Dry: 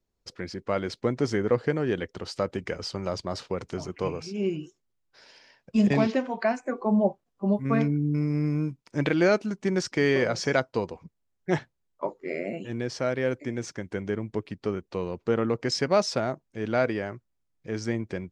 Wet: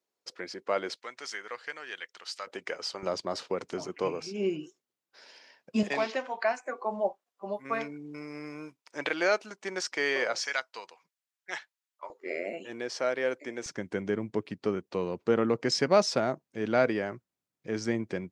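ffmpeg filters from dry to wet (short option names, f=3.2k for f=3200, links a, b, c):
-af "asetnsamples=n=441:p=0,asendcmd='0.96 highpass f 1500;2.47 highpass f 550;3.03 highpass f 260;5.83 highpass f 640;10.4 highpass f 1400;12.1 highpass f 440;13.66 highpass f 150',highpass=420"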